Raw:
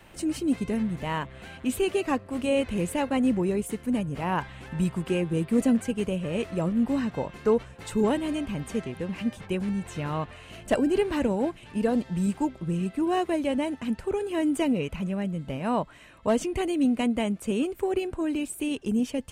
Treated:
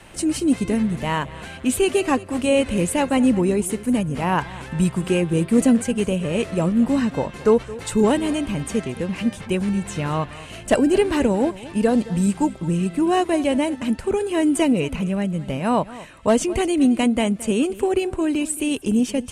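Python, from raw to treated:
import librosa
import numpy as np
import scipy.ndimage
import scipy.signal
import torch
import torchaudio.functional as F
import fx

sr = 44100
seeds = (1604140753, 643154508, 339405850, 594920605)

p1 = scipy.signal.sosfilt(scipy.signal.butter(4, 11000.0, 'lowpass', fs=sr, output='sos'), x)
p2 = fx.high_shelf(p1, sr, hz=8200.0, db=10.0)
p3 = p2 + fx.echo_single(p2, sr, ms=220, db=-18.0, dry=0)
y = p3 * 10.0 ** (6.5 / 20.0)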